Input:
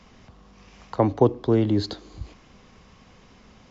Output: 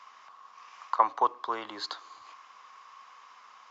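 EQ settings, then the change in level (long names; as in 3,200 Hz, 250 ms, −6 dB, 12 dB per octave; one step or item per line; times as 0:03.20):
high-pass with resonance 1,100 Hz, resonance Q 5.3
−3.0 dB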